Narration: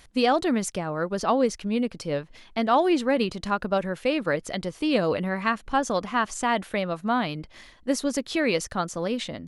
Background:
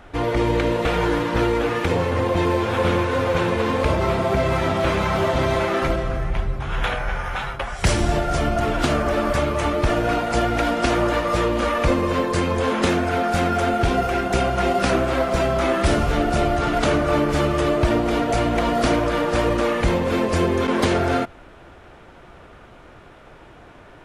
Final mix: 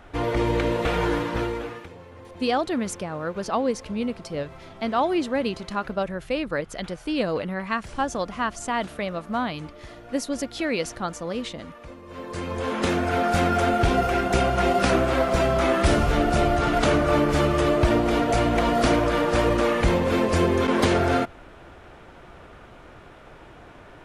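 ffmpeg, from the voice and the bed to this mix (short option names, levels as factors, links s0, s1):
-filter_complex "[0:a]adelay=2250,volume=0.794[s0];[1:a]volume=9.44,afade=t=out:st=1.12:d=0.78:silence=0.0944061,afade=t=in:st=12.05:d=1.22:silence=0.0749894[s1];[s0][s1]amix=inputs=2:normalize=0"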